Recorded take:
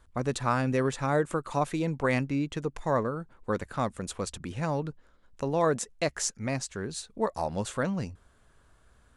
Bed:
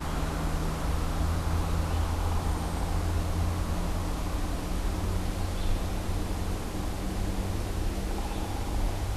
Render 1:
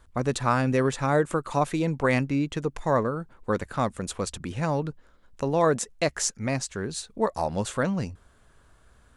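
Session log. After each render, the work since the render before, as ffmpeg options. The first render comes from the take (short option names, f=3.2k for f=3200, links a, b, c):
-af "volume=3.5dB"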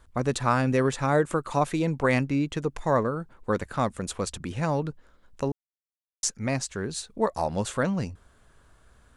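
-filter_complex "[0:a]asplit=3[a][b][c];[a]atrim=end=5.52,asetpts=PTS-STARTPTS,afade=t=out:st=5.516:d=0.004:c=hsin[d];[b]atrim=start=5.52:end=6.23,asetpts=PTS-STARTPTS,volume=0[e];[c]atrim=start=6.23,asetpts=PTS-STARTPTS,afade=t=in:d=0.004:c=hsin[f];[d][e][f]concat=n=3:v=0:a=1"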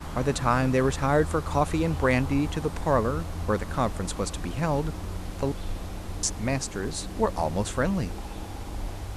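-filter_complex "[1:a]volume=-4.5dB[a];[0:a][a]amix=inputs=2:normalize=0"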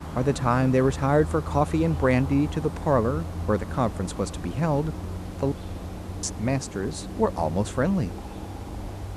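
-af "highpass=62,tiltshelf=f=970:g=3.5"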